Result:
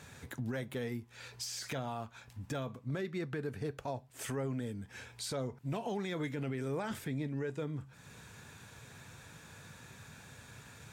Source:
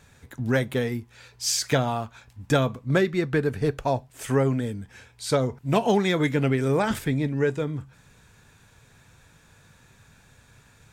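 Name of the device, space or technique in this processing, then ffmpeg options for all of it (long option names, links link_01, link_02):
podcast mastering chain: -af "highpass=86,deesser=0.65,acompressor=threshold=-48dB:ratio=2,alimiter=level_in=8dB:limit=-24dB:level=0:latency=1:release=12,volume=-8dB,volume=3.5dB" -ar 44100 -c:a libmp3lame -b:a 96k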